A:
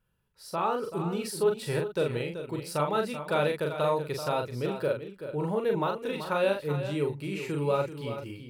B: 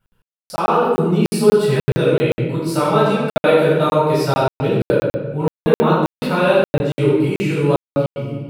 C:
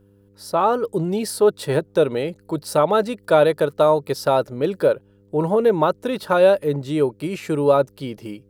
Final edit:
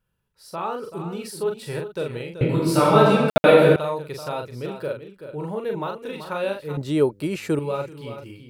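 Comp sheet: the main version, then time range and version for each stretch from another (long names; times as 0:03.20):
A
0:02.41–0:03.76: punch in from B
0:06.77–0:07.59: punch in from C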